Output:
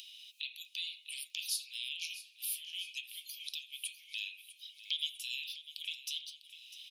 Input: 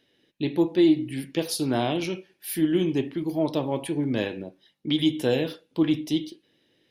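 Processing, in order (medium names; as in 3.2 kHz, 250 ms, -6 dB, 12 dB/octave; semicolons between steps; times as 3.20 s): Chebyshev high-pass 2.5 kHz, order 6; upward compressor, threshold -28 dBFS; on a send: feedback delay 650 ms, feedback 56%, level -15 dB; on the sum: trim -5 dB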